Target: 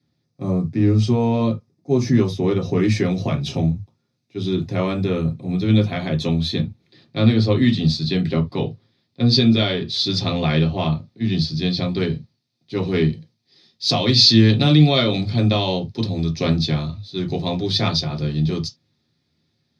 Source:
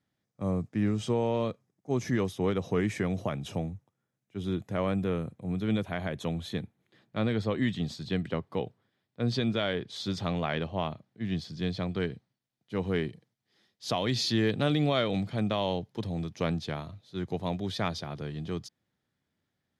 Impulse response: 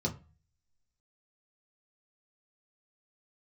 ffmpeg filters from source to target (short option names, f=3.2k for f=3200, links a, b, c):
-filter_complex "[0:a]asetnsamples=n=441:p=0,asendcmd='2.83 equalizer g 14.5',equalizer=f=3.9k:t=o:w=2.1:g=8.5[a];[1:a]atrim=start_sample=2205,afade=t=out:st=0.13:d=0.01,atrim=end_sample=6174[b];[a][b]afir=irnorm=-1:irlink=0,volume=-1.5dB"